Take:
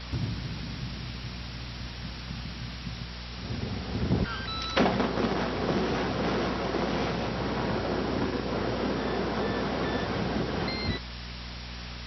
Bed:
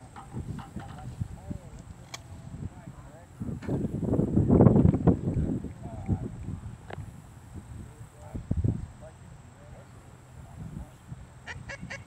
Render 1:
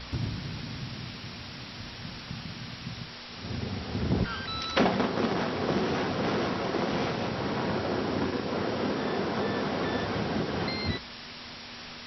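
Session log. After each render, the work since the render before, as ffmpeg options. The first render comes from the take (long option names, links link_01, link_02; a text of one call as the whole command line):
ffmpeg -i in.wav -af "bandreject=frequency=60:width_type=h:width=4,bandreject=frequency=120:width_type=h:width=4,bandreject=frequency=180:width_type=h:width=4" out.wav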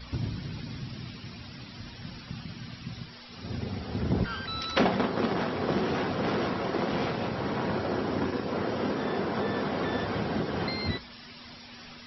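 ffmpeg -i in.wav -af "afftdn=noise_reduction=12:noise_floor=-43" out.wav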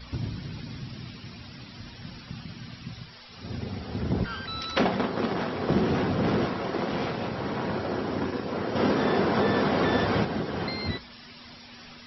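ffmpeg -i in.wav -filter_complex "[0:a]asettb=1/sr,asplit=3[link_01][link_02][link_03];[link_01]atrim=end=2.914[link_04];[link_02]atrim=start=2.91:end=3.41,asetpts=PTS-STARTPTS,afade=type=in:duration=0.004:curve=qsin,afade=type=out:start_time=0.496:duration=0.004:curve=qsin,equalizer=frequency=270:width_type=o:width=0.77:gain=-7.5[link_05];[link_03]atrim=start=3.406[link_06];[link_04][link_05]acrossfade=duration=0.004:curve1=hsin:curve2=qsin[link_07];[link_07][link_06]acrossfade=duration=0.004:curve1=qsin:curve2=hsin,asettb=1/sr,asplit=3[link_08][link_09][link_10];[link_08]atrim=end=5.694[link_11];[link_09]atrim=start=5.69:end=6.46,asetpts=PTS-STARTPTS,afade=type=in:duration=0.004:curve=qsin,afade=type=out:start_time=0.766:duration=0.004:curve=qsin,lowshelf=frequency=290:gain=8.5[link_12];[link_10]atrim=start=6.456[link_13];[link_11][link_12]acrossfade=duration=0.004:curve1=hsin:curve2=qsin[link_14];[link_14][link_13]acrossfade=duration=0.004:curve1=qsin:curve2=hsin,asettb=1/sr,asplit=3[link_15][link_16][link_17];[link_15]atrim=end=8.754[link_18];[link_16]atrim=start=8.75:end=10.25,asetpts=PTS-STARTPTS,afade=type=in:duration=0.004:curve=qsin,afade=type=out:start_time=1.496:duration=0.004:curve=qsin,acontrast=54[link_19];[link_17]atrim=start=10.246[link_20];[link_18][link_19]acrossfade=duration=0.004:curve1=hsin:curve2=qsin[link_21];[link_21][link_20]acrossfade=duration=0.004:curve1=qsin:curve2=hsin" out.wav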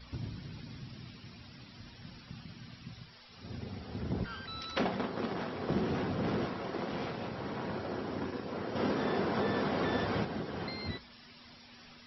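ffmpeg -i in.wav -af "volume=-8dB" out.wav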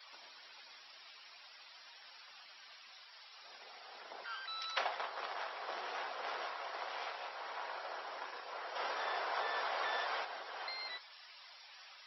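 ffmpeg -i in.wav -af "highpass=frequency=690:width=0.5412,highpass=frequency=690:width=1.3066" out.wav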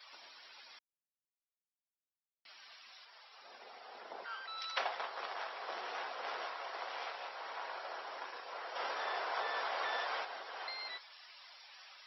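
ffmpeg -i in.wav -filter_complex "[0:a]asettb=1/sr,asplit=3[link_01][link_02][link_03];[link_01]atrim=end=3.054[link_04];[link_02]atrim=start=3.05:end=4.58,asetpts=PTS-STARTPTS,afade=type=in:duration=0.004:curve=qsin,afade=type=out:start_time=1.526:duration=0.004:curve=qsin,tiltshelf=frequency=1500:gain=5[link_05];[link_03]atrim=start=4.576[link_06];[link_04][link_05]acrossfade=duration=0.004:curve1=hsin:curve2=qsin[link_07];[link_07][link_06]acrossfade=duration=0.004:curve1=qsin:curve2=hsin,asplit=3[link_08][link_09][link_10];[link_08]atrim=end=0.79,asetpts=PTS-STARTPTS,afade=type=out:start_time=0.786:duration=0.004:curve=hsin[link_11];[link_09]atrim=start=0.79:end=2.45,asetpts=PTS-STARTPTS,volume=0[link_12];[link_10]atrim=start=2.45,asetpts=PTS-STARTPTS,afade=type=in:duration=0.004:curve=hsin[link_13];[link_11][link_12][link_13]concat=n=3:v=0:a=1" out.wav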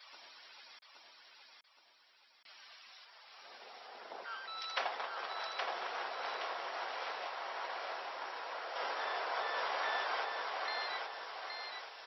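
ffmpeg -i in.wav -af "aecho=1:1:820|1640|2460|3280|4100:0.668|0.281|0.118|0.0495|0.0208" out.wav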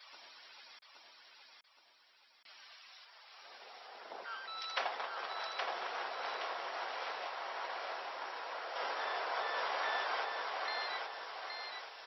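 ffmpeg -i in.wav -filter_complex "[0:a]asettb=1/sr,asplit=3[link_01][link_02][link_03];[link_01]atrim=end=2.674[link_04];[link_02]atrim=start=2.67:end=4.06,asetpts=PTS-STARTPTS,afade=type=in:duration=0.004:curve=qsin,afade=type=out:start_time=1.386:duration=0.004:curve=qsin,highpass=frequency=320:poles=1[link_05];[link_03]atrim=start=4.056[link_06];[link_04][link_05]acrossfade=duration=0.004:curve1=hsin:curve2=qsin[link_07];[link_07][link_06]acrossfade=duration=0.004:curve1=qsin:curve2=hsin" out.wav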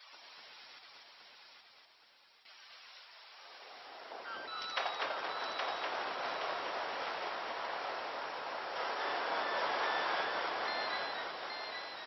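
ffmpeg -i in.wav -filter_complex "[0:a]asplit=5[link_01][link_02][link_03][link_04][link_05];[link_02]adelay=246,afreqshift=-110,volume=-3dB[link_06];[link_03]adelay=492,afreqshift=-220,volume=-12.4dB[link_07];[link_04]adelay=738,afreqshift=-330,volume=-21.7dB[link_08];[link_05]adelay=984,afreqshift=-440,volume=-31.1dB[link_09];[link_01][link_06][link_07][link_08][link_09]amix=inputs=5:normalize=0" out.wav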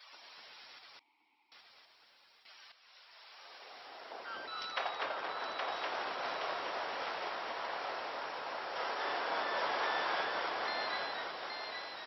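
ffmpeg -i in.wav -filter_complex "[0:a]asettb=1/sr,asplit=3[link_01][link_02][link_03];[link_01]atrim=end=0.994[link_04];[link_02]atrim=start=0.99:end=1.52,asetpts=PTS-STARTPTS,afade=type=in:duration=0.004:curve=qsin,afade=type=out:start_time=0.526:duration=0.004:curve=qsin,asplit=3[link_05][link_06][link_07];[link_05]bandpass=frequency=300:width_type=q:width=8,volume=0dB[link_08];[link_06]bandpass=frequency=870:width_type=q:width=8,volume=-6dB[link_09];[link_07]bandpass=frequency=2240:width_type=q:width=8,volume=-9dB[link_10];[link_08][link_09][link_10]amix=inputs=3:normalize=0[link_11];[link_03]atrim=start=1.516[link_12];[link_04][link_11]acrossfade=duration=0.004:curve1=hsin:curve2=qsin[link_13];[link_13][link_12]acrossfade=duration=0.004:curve1=qsin:curve2=hsin,asettb=1/sr,asplit=3[link_14][link_15][link_16];[link_14]atrim=end=4.684[link_17];[link_15]atrim=start=4.68:end=5.72,asetpts=PTS-STARTPTS,afade=type=in:duration=0.004:curve=qsin,afade=type=out:start_time=1.036:duration=0.004:curve=qsin,lowpass=frequency=4000:poles=1[link_18];[link_16]atrim=start=5.716[link_19];[link_17][link_18]acrossfade=duration=0.004:curve1=hsin:curve2=qsin[link_20];[link_20][link_19]acrossfade=duration=0.004:curve1=qsin:curve2=hsin,asplit=2[link_21][link_22];[link_21]atrim=end=2.72,asetpts=PTS-STARTPTS,afade=type=out:start_time=2.716:duration=0.004:curve=hsin:silence=0.223872[link_23];[link_22]atrim=start=2.72,asetpts=PTS-STARTPTS,afade=type=in:duration=0.57:silence=0.223872[link_24];[link_23][link_24]concat=n=2:v=0:a=1" out.wav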